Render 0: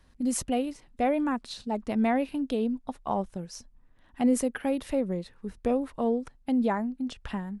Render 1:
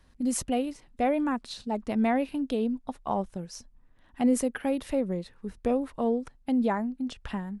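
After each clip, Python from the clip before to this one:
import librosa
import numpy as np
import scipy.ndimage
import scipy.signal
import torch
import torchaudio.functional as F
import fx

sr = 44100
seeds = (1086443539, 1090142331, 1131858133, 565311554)

y = x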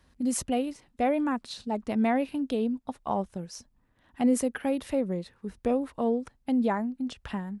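y = scipy.signal.sosfilt(scipy.signal.butter(2, 46.0, 'highpass', fs=sr, output='sos'), x)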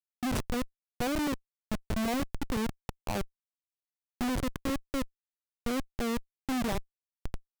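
y = fx.schmitt(x, sr, flips_db=-24.5)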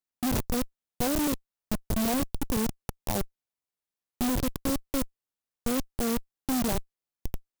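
y = fx.clock_jitter(x, sr, seeds[0], jitter_ms=0.13)
y = F.gain(torch.from_numpy(y), 3.5).numpy()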